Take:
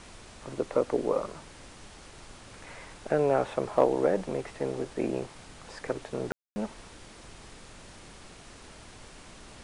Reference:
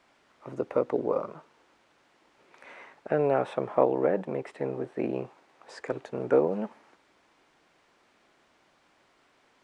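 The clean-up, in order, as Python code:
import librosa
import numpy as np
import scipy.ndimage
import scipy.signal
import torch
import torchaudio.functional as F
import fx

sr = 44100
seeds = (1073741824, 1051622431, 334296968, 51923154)

y = fx.fix_declip(x, sr, threshold_db=-10.0)
y = fx.fix_ambience(y, sr, seeds[0], print_start_s=8.28, print_end_s=8.78, start_s=6.32, end_s=6.56)
y = fx.noise_reduce(y, sr, print_start_s=8.28, print_end_s=8.78, reduce_db=16.0)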